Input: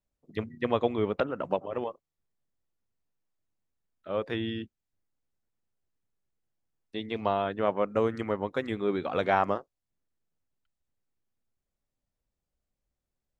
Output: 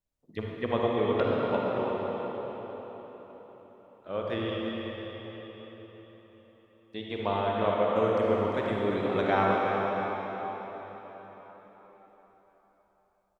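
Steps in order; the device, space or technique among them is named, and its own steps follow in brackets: cave (delay 348 ms -9 dB; reverberation RT60 4.7 s, pre-delay 41 ms, DRR -3 dB); trim -3 dB

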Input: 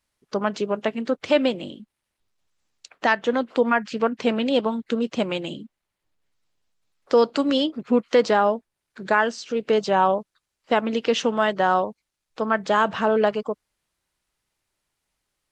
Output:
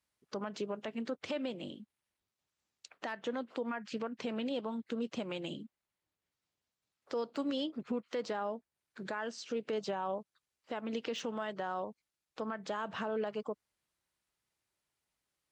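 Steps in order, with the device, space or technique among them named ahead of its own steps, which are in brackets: podcast mastering chain (high-pass 60 Hz; de-esser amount 65%; compression 2.5:1, threshold -25 dBFS, peak gain reduction 8.5 dB; peak limiter -19 dBFS, peak gain reduction 7 dB; trim -7.5 dB; MP3 112 kbps 48 kHz)

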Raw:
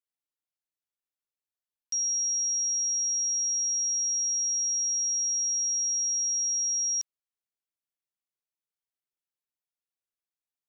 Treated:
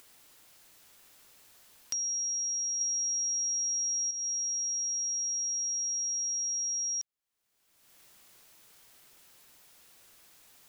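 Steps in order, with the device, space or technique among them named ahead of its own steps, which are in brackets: 2.81–4.11 s: peaking EQ 5.4 kHz +8.5 dB; upward and downward compression (upward compressor, threshold -32 dBFS; compression, threshold -31 dBFS, peak gain reduction 11.5 dB)

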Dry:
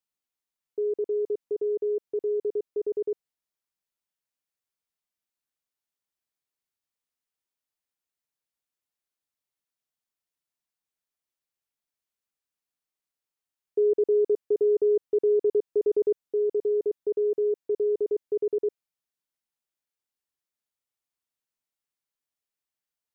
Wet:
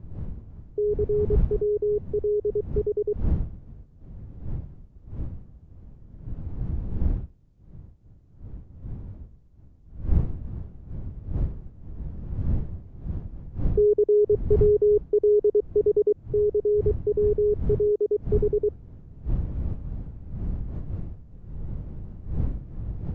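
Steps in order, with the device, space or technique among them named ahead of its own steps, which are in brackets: smartphone video outdoors (wind noise 92 Hz -33 dBFS; level rider gain up to 3 dB; AAC 48 kbps 16 kHz)

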